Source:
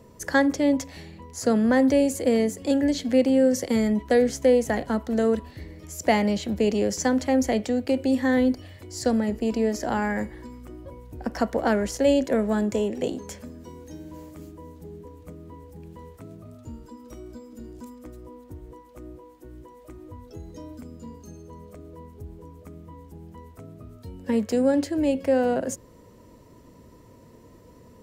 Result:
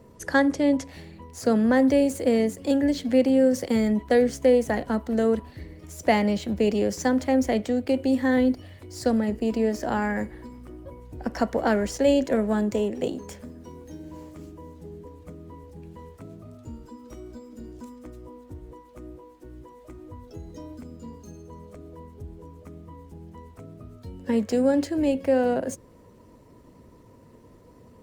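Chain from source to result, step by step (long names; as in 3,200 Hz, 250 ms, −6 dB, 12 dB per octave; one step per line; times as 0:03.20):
running median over 3 samples
Opus 32 kbit/s 48,000 Hz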